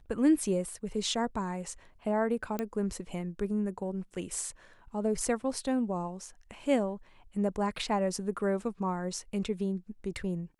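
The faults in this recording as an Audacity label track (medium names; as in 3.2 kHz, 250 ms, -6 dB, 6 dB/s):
2.590000	2.590000	pop -19 dBFS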